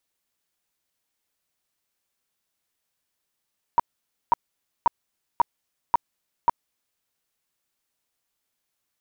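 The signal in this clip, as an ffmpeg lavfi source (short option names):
-f lavfi -i "aevalsrc='0.237*sin(2*PI*946*mod(t,0.54))*lt(mod(t,0.54),15/946)':d=3.24:s=44100"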